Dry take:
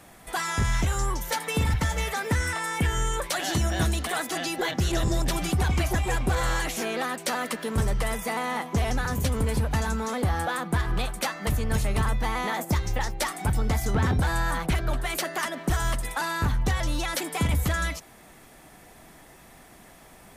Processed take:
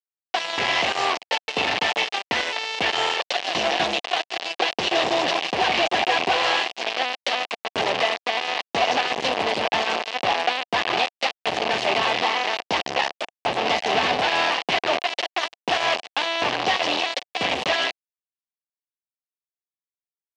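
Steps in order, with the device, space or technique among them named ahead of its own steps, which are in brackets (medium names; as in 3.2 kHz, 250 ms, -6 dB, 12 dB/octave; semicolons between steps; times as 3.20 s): 13.14–13.66 s: Chebyshev band-stop 1.3–7.9 kHz, order 3; hand-held game console (bit crusher 4-bit; cabinet simulation 440–4700 Hz, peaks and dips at 720 Hz +7 dB, 1.4 kHz -7 dB, 2.8 kHz +6 dB); trim +4.5 dB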